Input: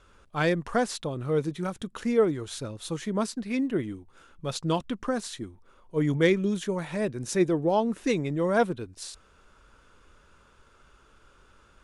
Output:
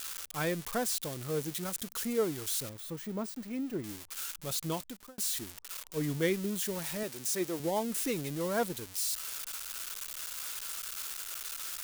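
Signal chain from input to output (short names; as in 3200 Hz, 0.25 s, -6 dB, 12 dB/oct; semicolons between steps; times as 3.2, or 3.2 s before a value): switching spikes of -19.5 dBFS; 2.69–3.84 de-esser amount 85%; 4.68–5.18 fade out; 7.03–7.6 HPF 320 Hz 6 dB/oct; gain -8 dB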